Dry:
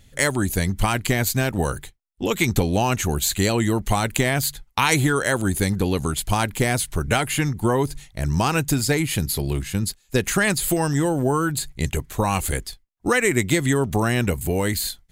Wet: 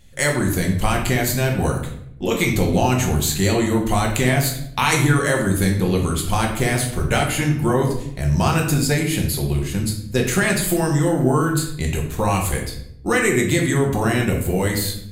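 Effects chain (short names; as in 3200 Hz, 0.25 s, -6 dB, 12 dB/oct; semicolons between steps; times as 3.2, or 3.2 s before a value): shoebox room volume 170 m³, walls mixed, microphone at 0.96 m; gain -1.5 dB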